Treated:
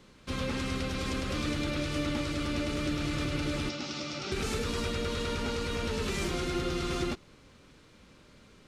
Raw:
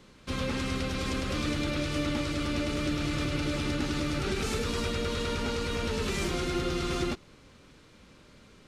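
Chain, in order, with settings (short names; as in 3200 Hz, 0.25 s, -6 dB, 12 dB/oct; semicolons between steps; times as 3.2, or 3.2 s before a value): 3.69–4.32 speaker cabinet 220–6700 Hz, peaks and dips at 290 Hz -6 dB, 440 Hz -9 dB, 1000 Hz -4 dB, 1700 Hz -9 dB, 5400 Hz +7 dB; gain -1.5 dB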